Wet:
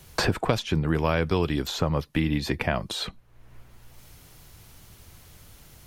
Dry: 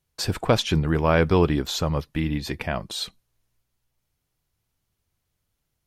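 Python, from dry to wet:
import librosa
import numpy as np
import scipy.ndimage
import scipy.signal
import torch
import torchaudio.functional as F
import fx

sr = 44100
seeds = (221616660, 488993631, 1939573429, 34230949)

y = fx.band_squash(x, sr, depth_pct=100)
y = y * 10.0 ** (-3.0 / 20.0)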